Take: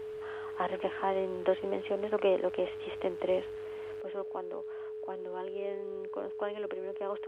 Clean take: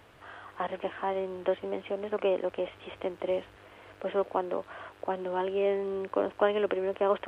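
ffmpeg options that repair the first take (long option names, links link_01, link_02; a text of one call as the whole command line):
ffmpeg -i in.wav -af "bandreject=frequency=430:width=30,asetnsamples=nb_out_samples=441:pad=0,asendcmd='4.01 volume volume 10.5dB',volume=0dB" out.wav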